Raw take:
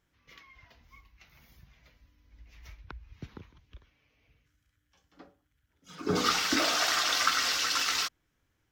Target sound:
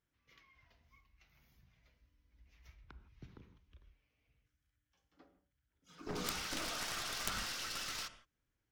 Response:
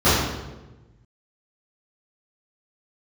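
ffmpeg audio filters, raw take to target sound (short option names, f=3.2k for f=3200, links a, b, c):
-filter_complex "[0:a]aeval=exprs='0.355*(cos(1*acos(clip(val(0)/0.355,-1,1)))-cos(1*PI/2))+0.141*(cos(3*acos(clip(val(0)/0.355,-1,1)))-cos(3*PI/2))+0.0178*(cos(4*acos(clip(val(0)/0.355,-1,1)))-cos(4*PI/2))':c=same,asplit=2[a][b];[1:a]atrim=start_sample=2205,atrim=end_sample=3969,asetrate=22491,aresample=44100[c];[b][c]afir=irnorm=-1:irlink=0,volume=-36dB[d];[a][d]amix=inputs=2:normalize=0,aeval=exprs='(mod(13.3*val(0)+1,2)-1)/13.3':c=same,volume=2.5dB"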